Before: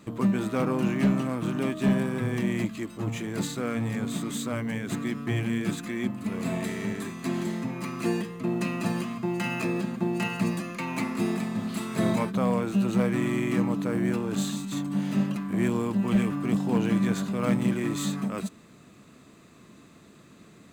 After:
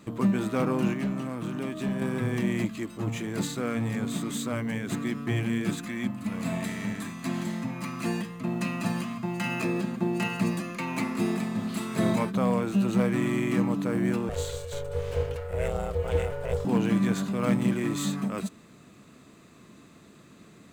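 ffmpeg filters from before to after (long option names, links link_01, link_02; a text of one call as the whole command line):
ffmpeg -i in.wav -filter_complex "[0:a]asettb=1/sr,asplit=3[link_01][link_02][link_03];[link_01]atrim=end=0.934[link_04];[link_02]atrim=start=0.93:end=2.02,asetpts=PTS-STARTPTS,afade=type=in:duration=0.004:curve=qsin,afade=type=out:start_time=1.086:duration=0.004:curve=qsin,acompressor=threshold=-31dB:ratio=2:attack=3.2:release=140:knee=1:detection=peak[link_05];[link_03]atrim=start=2.016[link_06];[link_04][link_05]acrossfade=duration=0.004:curve1=hsin:curve2=qsin[link_07];[link_07][link_06]acrossfade=duration=0.004:curve1=qsin:curve2=hsin,asettb=1/sr,asplit=3[link_08][link_09][link_10];[link_08]atrim=end=5.854[link_11];[link_09]atrim=start=5.85:end=9.49,asetpts=PTS-STARTPTS,afade=type=in:duration=0.004:curve=qsin,afade=type=out:start_time=3.636:duration=0.004:curve=qsin,equalizer=frequency=400:width_type=o:width=0.34:gain=-13.5[link_12];[link_10]atrim=start=9.486[link_13];[link_11][link_12]acrossfade=duration=0.004:curve1=hsin:curve2=qsin[link_14];[link_14][link_13]acrossfade=duration=0.004:curve1=qsin:curve2=hsin,asettb=1/sr,asplit=3[link_15][link_16][link_17];[link_15]atrim=end=14.294[link_18];[link_16]atrim=start=14.29:end=16.65,asetpts=PTS-STARTPTS,afade=type=in:duration=0.004:curve=qsin,afade=type=out:start_time=2.356:duration=0.004:curve=qsin,aeval=exprs='val(0)*sin(2*PI*280*n/s)':channel_layout=same[link_19];[link_17]atrim=start=16.646[link_20];[link_18][link_19]acrossfade=duration=0.004:curve1=hsin:curve2=qsin[link_21];[link_21][link_20]acrossfade=duration=0.004:curve1=qsin:curve2=hsin" out.wav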